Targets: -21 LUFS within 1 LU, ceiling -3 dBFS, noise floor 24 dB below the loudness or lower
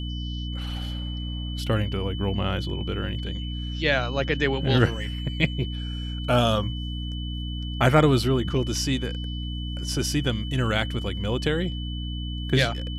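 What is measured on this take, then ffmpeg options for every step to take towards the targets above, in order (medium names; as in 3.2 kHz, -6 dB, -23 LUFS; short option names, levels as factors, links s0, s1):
hum 60 Hz; highest harmonic 300 Hz; hum level -29 dBFS; steady tone 3 kHz; tone level -38 dBFS; loudness -26.0 LUFS; peak level -5.5 dBFS; loudness target -21.0 LUFS
-> -af "bandreject=f=60:t=h:w=4,bandreject=f=120:t=h:w=4,bandreject=f=180:t=h:w=4,bandreject=f=240:t=h:w=4,bandreject=f=300:t=h:w=4"
-af "bandreject=f=3000:w=30"
-af "volume=1.78,alimiter=limit=0.708:level=0:latency=1"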